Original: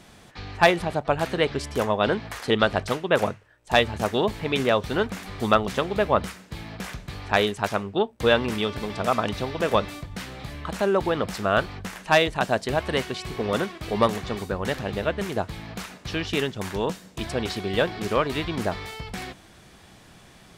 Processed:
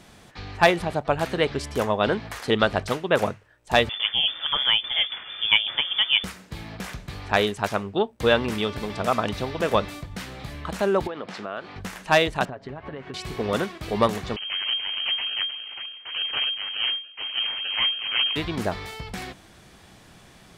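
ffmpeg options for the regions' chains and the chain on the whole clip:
ffmpeg -i in.wav -filter_complex "[0:a]asettb=1/sr,asplit=3[link_01][link_02][link_03];[link_01]atrim=end=3.894[link_04];[link_02]atrim=start=3.89:end=6.24,asetpts=PTS-STARTPTS,afade=type=in:duration=0.004:curve=qsin,afade=type=out:start_time=2.346:duration=0.004:curve=qsin,bandreject=frequency=990:width=7.2,lowpass=frequency=3100:width_type=q:width=0.5098,lowpass=frequency=3100:width_type=q:width=0.6013,lowpass=frequency=3100:width_type=q:width=0.9,lowpass=frequency=3100:width_type=q:width=2.563,afreqshift=-3600[link_05];[link_03]atrim=start=6.236[link_06];[link_04][link_05]acrossfade=duration=0.004:curve1=hsin:curve2=qsin[link_07];[link_07][link_06]acrossfade=duration=0.004:curve1=qsin:curve2=hsin,asettb=1/sr,asplit=3[link_08][link_09][link_10];[link_08]atrim=end=11.074[link_11];[link_09]atrim=start=11.07:end=11.76,asetpts=PTS-STARTPTS,afade=type=in:duration=0.004:curve=qsin,afade=type=out:start_time=0.686:duration=0.004:curve=qsin,acompressor=threshold=-28dB:ratio=6:attack=3.2:release=140:knee=1:detection=peak,highpass=230,lowpass=4000[link_12];[link_10]atrim=start=11.756[link_13];[link_11][link_12]acrossfade=duration=0.004:curve1=hsin:curve2=qsin[link_14];[link_14][link_13]acrossfade=duration=0.004:curve1=qsin:curve2=hsin,asettb=1/sr,asplit=3[link_15][link_16][link_17];[link_15]atrim=end=12.454[link_18];[link_16]atrim=start=12.45:end=13.14,asetpts=PTS-STARTPTS,afade=type=in:duration=0.004:curve=qsin,afade=type=out:start_time=0.686:duration=0.004:curve=qsin,lowpass=1800,aecho=1:1:7.2:0.59,atrim=end_sample=30429,acompressor=threshold=-31dB:ratio=20:attack=3.2:release=140:knee=1:detection=peak[link_19];[link_17]atrim=start=13.136[link_20];[link_18][link_19]acrossfade=duration=0.004:curve1=hsin:curve2=qsin[link_21];[link_21][link_20]acrossfade=duration=0.004:curve1=qsin:curve2=hsin,asettb=1/sr,asplit=3[link_22][link_23][link_24];[link_22]atrim=end=14.364[link_25];[link_23]atrim=start=14.36:end=18.36,asetpts=PTS-STARTPTS,afade=type=in:duration=0.004:curve=qsin,afade=type=out:start_time=3.996:duration=0.004:curve=qsin,acrusher=samples=23:mix=1:aa=0.000001:lfo=1:lforange=36.8:lforate=3.4,aeval=exprs='abs(val(0))':channel_layout=same,lowpass=frequency=2700:width_type=q:width=0.5098,lowpass=frequency=2700:width_type=q:width=0.6013,lowpass=frequency=2700:width_type=q:width=0.9,lowpass=frequency=2700:width_type=q:width=2.563,afreqshift=-3200[link_26];[link_24]atrim=start=18.356[link_27];[link_25][link_26]acrossfade=duration=0.004:curve1=hsin:curve2=qsin[link_28];[link_28][link_27]acrossfade=duration=0.004:curve1=qsin:curve2=hsin" out.wav

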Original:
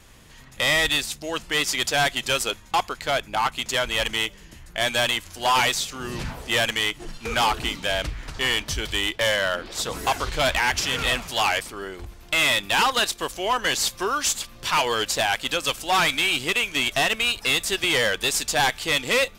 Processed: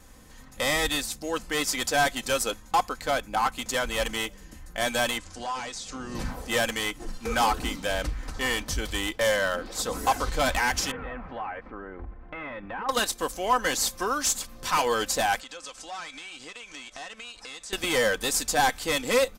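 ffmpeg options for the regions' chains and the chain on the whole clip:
ffmpeg -i in.wav -filter_complex "[0:a]asettb=1/sr,asplit=3[link_01][link_02][link_03];[link_01]atrim=end=5.184[link_04];[link_02]atrim=start=5.18:end=6.15,asetpts=PTS-STARTPTS,afade=type=in:duration=0.004:curve=qsin,afade=type=out:start_time=0.966:duration=0.004:curve=qsin,lowpass=frequency=8100:width=0.5412,lowpass=frequency=8100:width=1.3066,acompressor=threshold=-30dB:ratio=6:attack=3.2:release=140:knee=1:detection=peak[link_05];[link_03]atrim=start=6.146[link_06];[link_04][link_05]acrossfade=duration=0.004:curve1=hsin:curve2=qsin[link_07];[link_07][link_06]acrossfade=duration=0.004:curve1=qsin:curve2=hsin,asettb=1/sr,asplit=3[link_08][link_09][link_10];[link_08]atrim=end=10.914[link_11];[link_09]atrim=start=10.91:end=12.89,asetpts=PTS-STARTPTS,afade=type=in:duration=0.004:curve=qsin,afade=type=out:start_time=1.976:duration=0.004:curve=qsin,lowpass=frequency=2000:width=0.5412,lowpass=frequency=2000:width=1.3066,acompressor=threshold=-33dB:ratio=3:attack=3.2:release=140:knee=1:detection=peak[link_12];[link_10]atrim=start=12.886[link_13];[link_11][link_12]acrossfade=duration=0.004:curve1=hsin:curve2=qsin[link_14];[link_14][link_13]acrossfade=duration=0.004:curve1=qsin:curve2=hsin,asettb=1/sr,asplit=3[link_15][link_16][link_17];[link_15]atrim=end=15.404[link_18];[link_16]atrim=start=15.4:end=17.73,asetpts=PTS-STARTPTS,afade=type=in:duration=0.004:curve=qsin,afade=type=out:start_time=2.326:duration=0.004:curve=qsin,acompressor=threshold=-32dB:ratio=8:attack=3.2:release=140:knee=1:detection=peak,lowpass=frequency=7900:width=0.5412,lowpass=frequency=7900:width=1.3066,lowshelf=frequency=440:gain=-11.5[link_19];[link_17]atrim=start=17.726[link_20];[link_18][link_19]acrossfade=duration=0.004:curve1=hsin:curve2=qsin[link_21];[link_21][link_20]acrossfade=duration=0.004:curve1=qsin:curve2=hsin,equalizer=frequency=2900:width=1.1:gain=-8,aecho=1:1:3.9:0.46,volume=-1dB" out.wav

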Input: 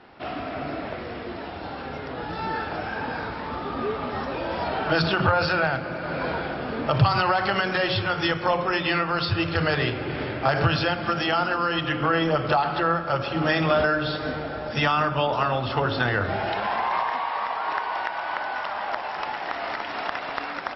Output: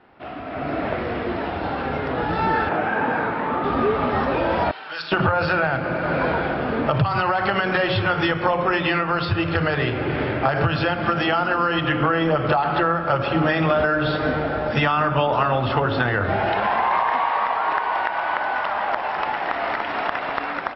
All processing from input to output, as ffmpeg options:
ffmpeg -i in.wav -filter_complex "[0:a]asettb=1/sr,asplit=3[link_01][link_02][link_03];[link_01]atrim=end=2.694[link_04];[link_02]atrim=start=2.69:end=3.64,asetpts=PTS-STARTPTS,afade=type=in:duration=0.004:curve=qsin,afade=type=out:start_time=0.946:duration=0.004:curve=qsin,asoftclip=type=hard:threshold=-22.5dB,highpass=150,lowpass=2800[link_05];[link_03]atrim=start=3.636[link_06];[link_04][link_05]acrossfade=duration=0.004:curve1=hsin:curve2=qsin[link_07];[link_07][link_06]acrossfade=duration=0.004:curve1=qsin:curve2=hsin,asettb=1/sr,asplit=3[link_08][link_09][link_10];[link_08]atrim=end=4.714[link_11];[link_09]atrim=start=4.71:end=5.12,asetpts=PTS-STARTPTS,afade=type=in:duration=0.004:curve=qsin,afade=type=out:start_time=0.406:duration=0.004:curve=qsin,aderivative,bandreject=frequency=680:width=7.1,asplit=2[link_12][link_13];[link_13]adelay=44,volume=-8dB[link_14];[link_12][link_14]amix=inputs=2:normalize=0,atrim=end_sample=18081[link_15];[link_10]atrim=start=5.116[link_16];[link_11][link_15]acrossfade=duration=0.004:curve1=hsin:curve2=qsin[link_17];[link_17][link_16]acrossfade=duration=0.004:curve1=qsin:curve2=hsin,acompressor=threshold=-23dB:ratio=6,lowpass=2900,dynaudnorm=framelen=440:gausssize=3:maxgain=12.5dB,volume=-3.5dB" out.wav

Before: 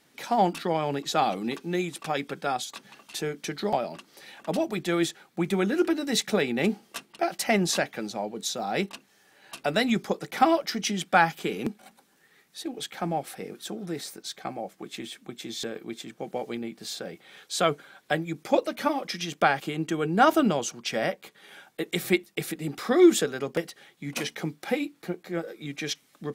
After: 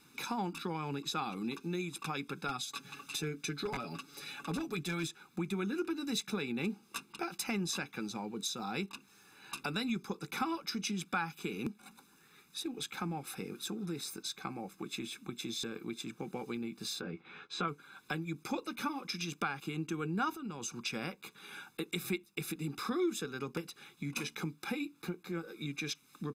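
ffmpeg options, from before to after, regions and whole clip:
ffmpeg -i in.wav -filter_complex "[0:a]asettb=1/sr,asplit=3[link_01][link_02][link_03];[link_01]atrim=end=2.484[link_04];[link_02]atrim=start=2.48:end=5.07,asetpts=PTS-STARTPTS,afade=type=in:duration=0.004:curve=qsin,afade=type=out:start_time=2.586:duration=0.004:curve=qsin,bandreject=frequency=960:width=6.9,aecho=1:1:7.1:0.7,atrim=end_sample=114219,aeval=exprs='0.112*(abs(mod(val(0)/0.112+3,4)-2)-1)':channel_layout=same[link_05];[link_03]atrim=start=5.066[link_06];[link_04][link_05]acrossfade=duration=0.004:curve1=hsin:curve2=qsin[link_07];[link_07][link_06]acrossfade=duration=0.004:curve1=qsin:curve2=hsin,asettb=1/sr,asplit=3[link_08][link_09][link_10];[link_08]atrim=end=17.014[link_11];[link_09]atrim=start=17.01:end=17.68,asetpts=PTS-STARTPTS,afade=type=in:duration=0.004:curve=qsin,afade=type=out:start_time=0.666:duration=0.004:curve=qsin,agate=range=-9dB:threshold=-56dB:ratio=16:release=100:detection=peak,lowpass=2300,asplit=2[link_12][link_13];[link_13]adelay=12,volume=-4dB[link_14];[link_12][link_14]amix=inputs=2:normalize=0,atrim=end_sample=29547[link_15];[link_10]atrim=start=17.676[link_16];[link_11][link_15]acrossfade=duration=0.004:curve1=hsin:curve2=qsin[link_17];[link_17][link_16]acrossfade=duration=0.004:curve1=qsin:curve2=hsin,asettb=1/sr,asplit=3[link_18][link_19][link_20];[link_18]atrim=end=20.344[link_21];[link_19]atrim=start=20.34:end=20.86,asetpts=PTS-STARTPTS,afade=type=in:duration=0.004:curve=qsin,afade=type=out:start_time=0.516:duration=0.004:curve=qsin,bandreject=frequency=3100:width=14,acompressor=threshold=-33dB:ratio=4:attack=3.2:release=140:knee=1:detection=peak[link_22];[link_20]atrim=start=20.856[link_23];[link_21][link_22]acrossfade=duration=0.004:curve1=hsin:curve2=qsin[link_24];[link_24][link_23]acrossfade=duration=0.004:curve1=qsin:curve2=hsin,aecho=1:1:0.8:0.87,acompressor=threshold=-37dB:ratio=2.5,volume=-1.5dB" out.wav

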